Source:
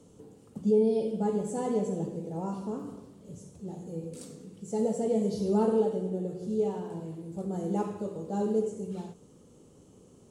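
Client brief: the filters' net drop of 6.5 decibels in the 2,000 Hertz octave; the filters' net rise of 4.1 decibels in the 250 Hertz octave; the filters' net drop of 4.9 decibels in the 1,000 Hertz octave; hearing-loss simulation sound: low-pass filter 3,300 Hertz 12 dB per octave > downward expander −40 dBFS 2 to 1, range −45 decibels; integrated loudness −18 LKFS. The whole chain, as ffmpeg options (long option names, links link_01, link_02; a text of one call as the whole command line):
ffmpeg -i in.wav -af "lowpass=3300,equalizer=frequency=250:width_type=o:gain=5.5,equalizer=frequency=1000:width_type=o:gain=-6,equalizer=frequency=2000:width_type=o:gain=-6,agate=range=-45dB:threshold=-40dB:ratio=2,volume=10.5dB" out.wav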